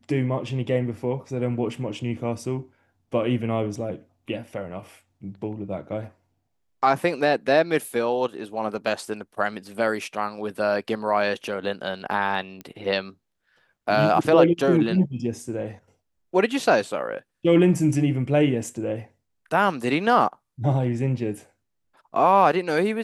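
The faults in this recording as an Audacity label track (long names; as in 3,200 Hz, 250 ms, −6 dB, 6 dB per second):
12.610000	12.610000	click −22 dBFS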